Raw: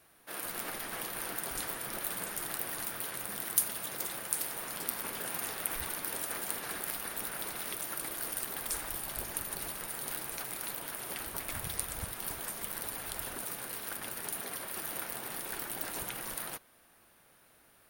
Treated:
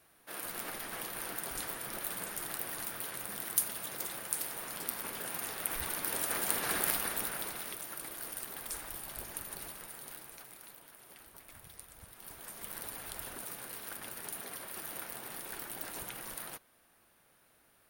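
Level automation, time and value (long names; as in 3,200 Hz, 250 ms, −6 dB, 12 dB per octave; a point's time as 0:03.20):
0:05.48 −2 dB
0:06.85 +6.5 dB
0:07.83 −5 dB
0:09.58 −5 dB
0:10.90 −15.5 dB
0:11.98 −15.5 dB
0:12.73 −4 dB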